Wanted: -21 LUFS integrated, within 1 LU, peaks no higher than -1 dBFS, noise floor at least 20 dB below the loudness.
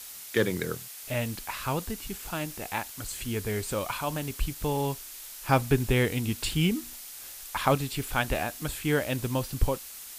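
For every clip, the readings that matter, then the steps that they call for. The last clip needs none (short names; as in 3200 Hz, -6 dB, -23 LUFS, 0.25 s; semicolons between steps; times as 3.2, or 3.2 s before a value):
noise floor -43 dBFS; noise floor target -50 dBFS; loudness -30.0 LUFS; peak -8.5 dBFS; loudness target -21.0 LUFS
-> denoiser 7 dB, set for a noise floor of -43 dBFS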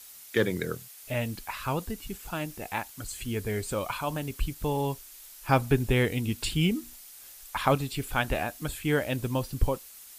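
noise floor -49 dBFS; noise floor target -50 dBFS
-> denoiser 6 dB, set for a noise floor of -49 dBFS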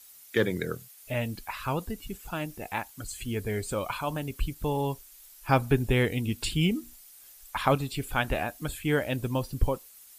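noise floor -52 dBFS; loudness -30.0 LUFS; peak -8.5 dBFS; loudness target -21.0 LUFS
-> gain +9 dB; limiter -1 dBFS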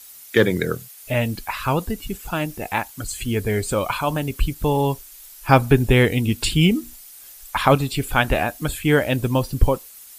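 loudness -21.5 LUFS; peak -1.0 dBFS; noise floor -43 dBFS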